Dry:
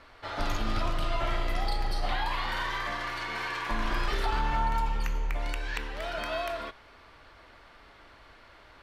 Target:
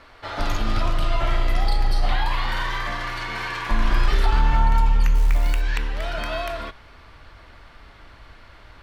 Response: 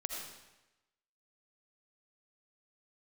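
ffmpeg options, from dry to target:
-filter_complex "[0:a]asplit=3[link_01][link_02][link_03];[link_01]afade=type=out:start_time=5.14:duration=0.02[link_04];[link_02]acrusher=bits=5:mode=log:mix=0:aa=0.000001,afade=type=in:start_time=5.14:duration=0.02,afade=type=out:start_time=5.6:duration=0.02[link_05];[link_03]afade=type=in:start_time=5.6:duration=0.02[link_06];[link_04][link_05][link_06]amix=inputs=3:normalize=0,asubboost=boost=2:cutoff=230,volume=5dB"

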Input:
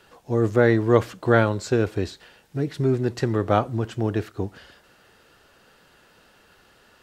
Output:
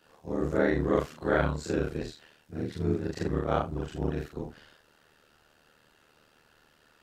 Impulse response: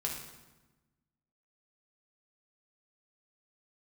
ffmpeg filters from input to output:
-af "afftfilt=real='re':imag='-im':win_size=4096:overlap=0.75,aeval=exprs='val(0)*sin(2*PI*38*n/s)':channel_layout=same"

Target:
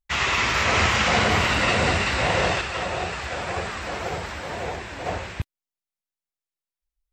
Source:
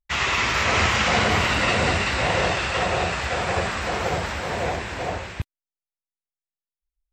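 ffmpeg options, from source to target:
ffmpeg -i in.wav -filter_complex "[0:a]asettb=1/sr,asplit=3[link_01][link_02][link_03];[link_01]atrim=end=2.614[link_04];[link_02]atrim=start=2.61:end=5.06,asetpts=PTS-STARTPTS,afade=type=in:duration=0.004:curve=qsin,afade=type=out:start_time=2.446:duration=0.004:curve=qsin,flanger=delay=2.1:depth=1.5:regen=72:speed=1.9:shape=triangular[link_05];[link_03]atrim=start=5.056[link_06];[link_04][link_05]acrossfade=duration=0.004:curve1=hsin:curve2=qsin[link_07];[link_07][link_06]acrossfade=duration=0.004:curve1=qsin:curve2=hsin" out.wav

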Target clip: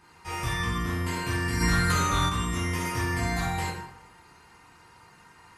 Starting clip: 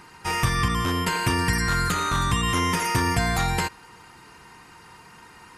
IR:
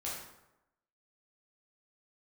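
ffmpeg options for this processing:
-filter_complex "[1:a]atrim=start_sample=2205[link_01];[0:a][link_01]afir=irnorm=-1:irlink=0,asplit=3[link_02][link_03][link_04];[link_02]afade=type=out:start_time=1.6:duration=0.02[link_05];[link_03]acontrast=61,afade=type=in:start_time=1.6:duration=0.02,afade=type=out:start_time=2.28:duration=0.02[link_06];[link_04]afade=type=in:start_time=2.28:duration=0.02[link_07];[link_05][link_06][link_07]amix=inputs=3:normalize=0,volume=-7.5dB"

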